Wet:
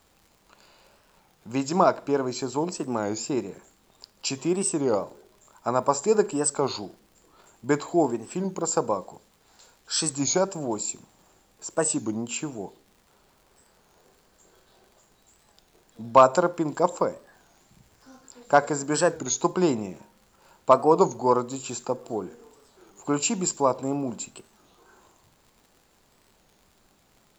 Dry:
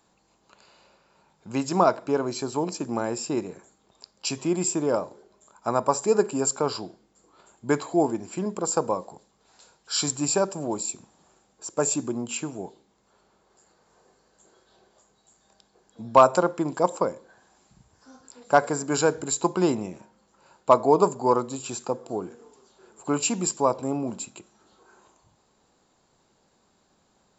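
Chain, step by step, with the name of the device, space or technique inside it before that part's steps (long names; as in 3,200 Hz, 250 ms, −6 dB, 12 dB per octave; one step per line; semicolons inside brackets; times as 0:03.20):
warped LP (wow of a warped record 33 1/3 rpm, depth 160 cents; surface crackle; pink noise bed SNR 38 dB)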